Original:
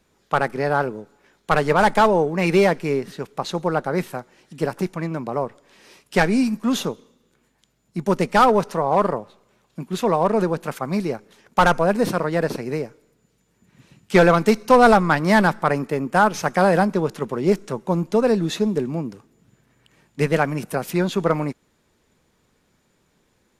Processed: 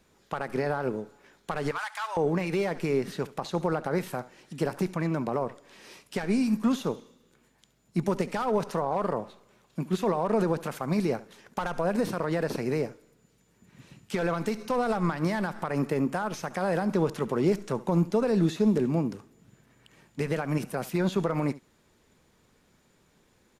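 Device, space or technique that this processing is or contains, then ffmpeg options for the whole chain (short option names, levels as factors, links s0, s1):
de-esser from a sidechain: -filter_complex "[0:a]asettb=1/sr,asplit=3[s0][s1][s2];[s0]atrim=end=1.714[s3];[s1]atrim=start=1.71:end=2.17,asetpts=PTS-STARTPTS,afade=t=in:d=0.004:c=qsin,afade=t=out:st=0.456:d=0.004:c=qsin,highpass=f=1100:w=0.5412,highpass=f=1100:w=1.3066[s4];[s2]atrim=start=2.166[s5];[s3][s4]acrossfade=d=0.004:c1=hsin:c2=qsin[s6];[s6][s5]acrossfade=d=0.004:c1=qsin:c2=hsin,asplit=2[s7][s8];[s8]highpass=f=5800:p=1,apad=whole_len=1040600[s9];[s7][s9]sidechaincompress=threshold=0.0112:ratio=8:attack=0.73:release=78,aecho=1:1:70:0.126"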